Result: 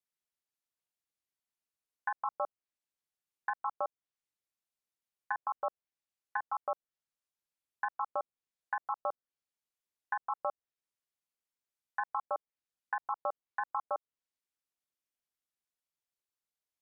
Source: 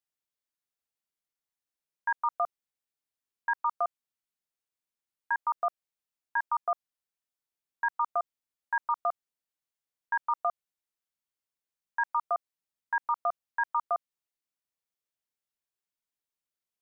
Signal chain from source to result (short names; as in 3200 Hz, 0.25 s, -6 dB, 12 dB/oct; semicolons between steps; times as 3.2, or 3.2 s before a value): ring modulator 110 Hz; treble ducked by the level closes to 1000 Hz, closed at -31.5 dBFS